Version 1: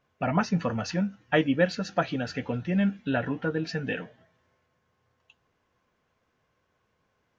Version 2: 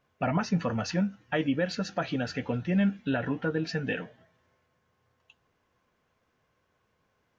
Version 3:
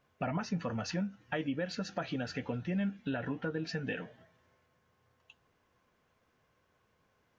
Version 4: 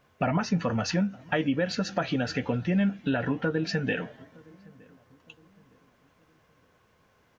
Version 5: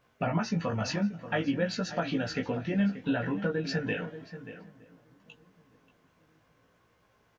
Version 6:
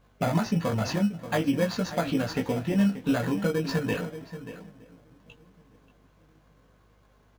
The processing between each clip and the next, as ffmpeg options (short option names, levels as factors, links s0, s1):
-af "alimiter=limit=0.133:level=0:latency=1:release=68"
-af "acompressor=threshold=0.0141:ratio=2"
-filter_complex "[0:a]asplit=2[s0][s1];[s1]adelay=915,lowpass=f=900:p=1,volume=0.0631,asplit=2[s2][s3];[s3]adelay=915,lowpass=f=900:p=1,volume=0.45,asplit=2[s4][s5];[s5]adelay=915,lowpass=f=900:p=1,volume=0.45[s6];[s0][s2][s4][s6]amix=inputs=4:normalize=0,volume=2.66"
-filter_complex "[0:a]flanger=delay=17:depth=2.5:speed=0.57,asplit=2[s0][s1];[s1]adelay=583.1,volume=0.251,highshelf=f=4000:g=-13.1[s2];[s0][s2]amix=inputs=2:normalize=0"
-filter_complex "[0:a]asplit=2[s0][s1];[s1]acrusher=samples=16:mix=1:aa=0.000001,volume=0.631[s2];[s0][s2]amix=inputs=2:normalize=0,aeval=exprs='val(0)+0.000794*(sin(2*PI*50*n/s)+sin(2*PI*2*50*n/s)/2+sin(2*PI*3*50*n/s)/3+sin(2*PI*4*50*n/s)/4+sin(2*PI*5*50*n/s)/5)':c=same"